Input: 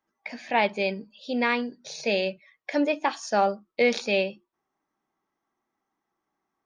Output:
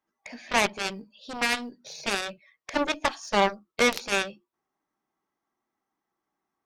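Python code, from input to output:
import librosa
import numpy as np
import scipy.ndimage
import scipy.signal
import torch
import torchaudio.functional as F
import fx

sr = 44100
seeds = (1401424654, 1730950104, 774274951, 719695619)

y = fx.cheby_harmonics(x, sr, harmonics=(6, 7), levels_db=(-37, -12), full_scale_db=-9.5)
y = fx.quant_float(y, sr, bits=6)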